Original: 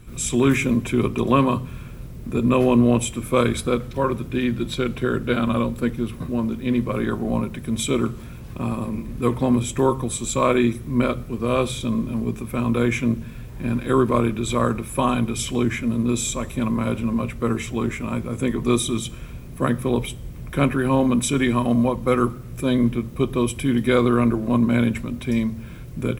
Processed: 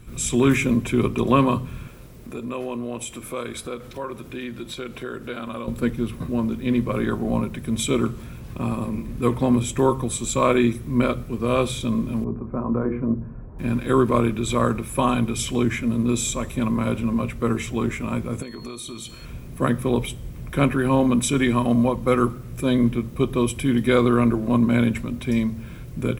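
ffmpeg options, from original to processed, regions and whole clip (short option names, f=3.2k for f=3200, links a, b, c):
-filter_complex "[0:a]asettb=1/sr,asplit=3[a][b][c];[a]atrim=end=1.874[d];[b]atrim=start=1.87:end=5.68,asetpts=PTS-STARTPTS,afade=t=in:d=0.004:c=qsin,afade=t=out:st=3.806:d=0.004:c=qsin,bass=f=250:g=-9,treble=f=4k:g=1,acompressor=threshold=-33dB:ratio=2:attack=3.2:release=140:knee=1:detection=peak[e];[c]atrim=start=5.676[f];[d][e]acrossfade=d=0.004:c1=hsin:c2=qsin[g];[g][f]acrossfade=d=0.004:c1=qsin:c2=hsin,asettb=1/sr,asplit=3[h][i][j];[h]atrim=end=12.244[k];[i]atrim=start=12.24:end=13.59,asetpts=PTS-STARTPTS,afade=t=in:d=0.004:c=qsin,afade=t=out:st=1.346:d=0.004:c=qsin,lowpass=f=1.2k:w=0.5412,lowpass=f=1.2k:w=1.3066,bandreject=f=60:t=h:w=6,bandreject=f=120:t=h:w=6,bandreject=f=180:t=h:w=6,bandreject=f=240:t=h:w=6,bandreject=f=300:t=h:w=6,bandreject=f=360:t=h:w=6,bandreject=f=420:t=h:w=6,bandreject=f=480:t=h:w=6[l];[j]atrim=start=13.586[m];[k][l]acrossfade=d=0.004:c1=hsin:c2=qsin[n];[n][m]acrossfade=d=0.004:c1=qsin:c2=hsin,asettb=1/sr,asplit=3[o][p][q];[o]atrim=end=18.424[r];[p]atrim=start=18.42:end=19.25,asetpts=PTS-STARTPTS,afade=t=in:d=0.004:c=qsin,afade=t=out:st=0.826:d=0.004:c=qsin,lowshelf=f=270:g=-8,acompressor=threshold=-31dB:ratio=8:attack=3.2:release=140:knee=1:detection=peak,aeval=exprs='val(0)+0.00501*sin(2*PI*4300*n/s)':c=same[s];[q]atrim=start=19.246[t];[r][s]acrossfade=d=0.004:c1=hsin:c2=qsin[u];[u][t]acrossfade=d=0.004:c1=qsin:c2=hsin"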